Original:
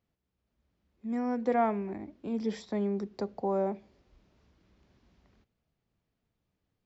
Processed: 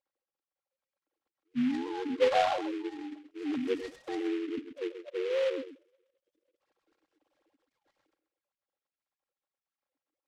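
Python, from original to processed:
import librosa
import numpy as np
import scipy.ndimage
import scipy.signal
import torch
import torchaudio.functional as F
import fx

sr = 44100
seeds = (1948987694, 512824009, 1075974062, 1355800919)

y = fx.sine_speech(x, sr)
y = fx.spec_erase(y, sr, start_s=2.84, length_s=1.57, low_hz=630.0, high_hz=3000.0)
y = fx.stretch_grains(y, sr, factor=1.5, grain_ms=22.0)
y = y + 10.0 ** (-10.5 / 20.0) * np.pad(y, (int(131 * sr / 1000.0), 0))[:len(y)]
y = fx.noise_mod_delay(y, sr, seeds[0], noise_hz=2100.0, depth_ms=0.06)
y = y * 10.0 ** (1.0 / 20.0)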